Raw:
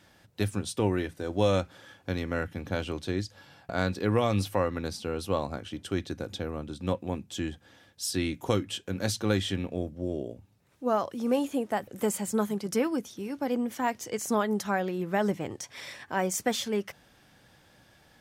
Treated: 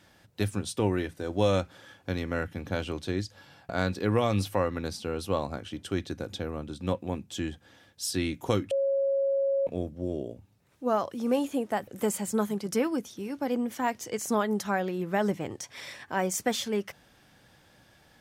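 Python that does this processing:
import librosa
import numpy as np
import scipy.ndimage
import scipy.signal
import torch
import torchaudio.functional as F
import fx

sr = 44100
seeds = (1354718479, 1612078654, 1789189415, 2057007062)

y = fx.edit(x, sr, fx.bleep(start_s=8.71, length_s=0.96, hz=549.0, db=-23.0), tone=tone)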